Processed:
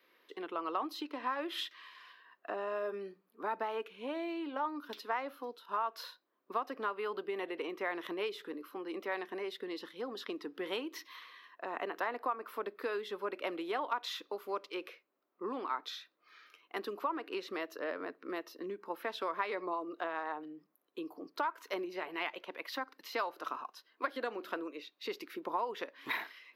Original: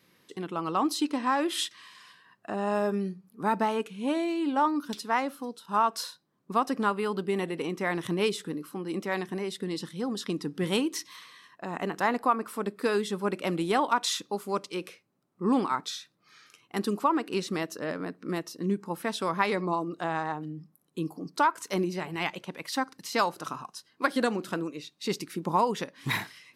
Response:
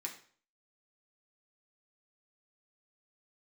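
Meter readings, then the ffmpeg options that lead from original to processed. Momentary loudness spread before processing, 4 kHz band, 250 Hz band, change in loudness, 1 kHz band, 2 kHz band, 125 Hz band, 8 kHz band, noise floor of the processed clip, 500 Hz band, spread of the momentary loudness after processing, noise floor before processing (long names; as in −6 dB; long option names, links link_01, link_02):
11 LU, −8.5 dB, −13.5 dB, −9.0 dB, −9.0 dB, −7.0 dB, below −25 dB, −19.0 dB, −77 dBFS, −7.5 dB, 9 LU, −69 dBFS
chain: -filter_complex "[0:a]lowshelf=frequency=200:width_type=q:width=1.5:gain=-7.5,acompressor=threshold=-29dB:ratio=4,aexciter=amount=10.8:drive=7:freq=12000,acrossover=split=360 4100:gain=0.0794 1 0.0708[link_01][link_02][link_03];[link_01][link_02][link_03]amix=inputs=3:normalize=0,bandreject=frequency=820:width=12,volume=-1.5dB"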